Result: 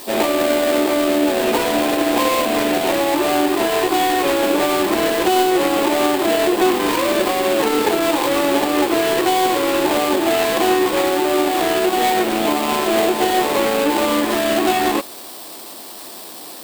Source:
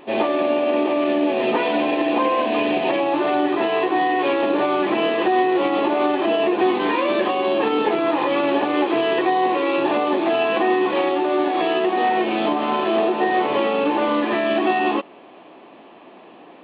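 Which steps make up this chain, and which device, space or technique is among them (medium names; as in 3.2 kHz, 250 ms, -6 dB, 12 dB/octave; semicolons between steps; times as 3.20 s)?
budget class-D amplifier (dead-time distortion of 0.22 ms; zero-crossing glitches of -20.5 dBFS); trim +3 dB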